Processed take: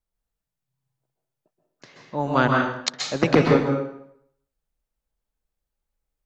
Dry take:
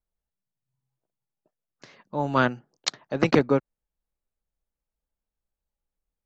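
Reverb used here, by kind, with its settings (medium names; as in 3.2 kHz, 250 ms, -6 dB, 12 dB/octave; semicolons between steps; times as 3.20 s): plate-style reverb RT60 0.71 s, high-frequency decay 0.85×, pre-delay 115 ms, DRR 0 dB; trim +1 dB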